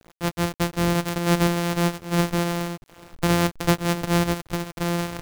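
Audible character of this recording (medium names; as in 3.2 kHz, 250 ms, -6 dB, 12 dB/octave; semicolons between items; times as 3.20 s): a buzz of ramps at a fixed pitch in blocks of 256 samples; tremolo triangle 2.3 Hz, depth 45%; a quantiser's noise floor 8-bit, dither none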